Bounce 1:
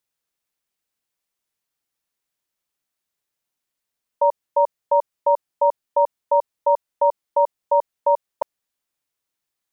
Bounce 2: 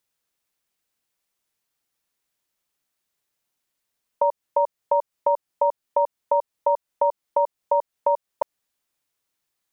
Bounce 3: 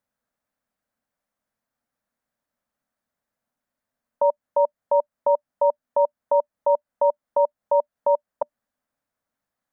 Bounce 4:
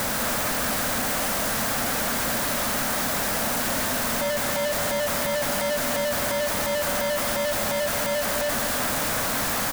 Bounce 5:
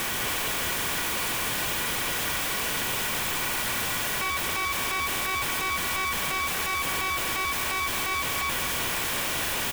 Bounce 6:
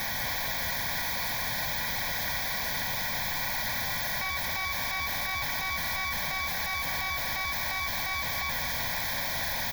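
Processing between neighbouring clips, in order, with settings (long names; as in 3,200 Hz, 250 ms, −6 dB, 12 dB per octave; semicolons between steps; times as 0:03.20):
downward compressor 2.5 to 1, threshold −23 dBFS, peak gain reduction 7 dB; level +3 dB
drawn EQ curve 170 Hz 0 dB, 240 Hz +8 dB, 360 Hz −8 dB, 590 Hz +5 dB, 920 Hz −1 dB, 1,600 Hz 0 dB, 2,700 Hz −12 dB; brickwall limiter −12.5 dBFS, peak gain reduction 5.5 dB; level +1.5 dB
sign of each sample alone; on a send: single-tap delay 203 ms −7.5 dB; on the sum: level +1.5 dB
ring modulation 1,700 Hz
phaser with its sweep stopped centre 1,900 Hz, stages 8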